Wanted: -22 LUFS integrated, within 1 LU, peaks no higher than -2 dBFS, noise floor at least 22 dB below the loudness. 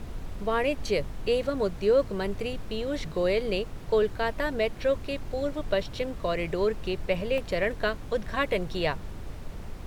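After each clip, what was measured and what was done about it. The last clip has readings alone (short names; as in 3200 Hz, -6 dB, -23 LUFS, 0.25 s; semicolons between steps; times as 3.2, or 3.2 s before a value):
dropouts 1; longest dropout 1.1 ms; noise floor -40 dBFS; noise floor target -51 dBFS; loudness -29.0 LUFS; peak -13.0 dBFS; loudness target -22.0 LUFS
-> interpolate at 7.38, 1.1 ms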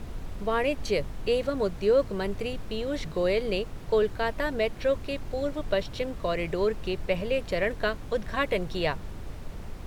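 dropouts 0; noise floor -40 dBFS; noise floor target -51 dBFS
-> noise print and reduce 11 dB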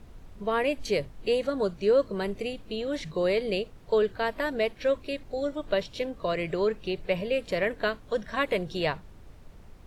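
noise floor -50 dBFS; noise floor target -51 dBFS
-> noise print and reduce 6 dB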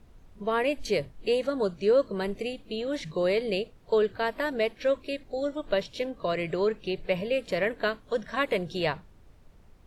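noise floor -55 dBFS; loudness -29.0 LUFS; peak -13.0 dBFS; loudness target -22.0 LUFS
-> gain +7 dB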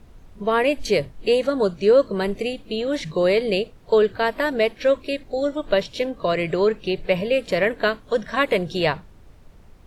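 loudness -22.0 LUFS; peak -6.0 dBFS; noise floor -48 dBFS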